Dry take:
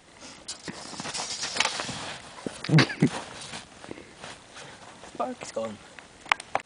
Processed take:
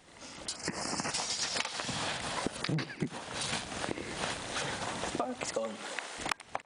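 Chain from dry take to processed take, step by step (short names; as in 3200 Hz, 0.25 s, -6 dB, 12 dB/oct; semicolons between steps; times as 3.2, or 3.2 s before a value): 5.54–6.17 HPF 160 Hz -> 580 Hz 12 dB/oct; outdoor echo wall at 16 m, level -20 dB; compressor 16:1, threshold -41 dBFS, peak gain reduction 27.5 dB; 0.56–1.11 Butterworth band-stop 3600 Hz, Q 2; AGC gain up to 15 dB; gain -4.5 dB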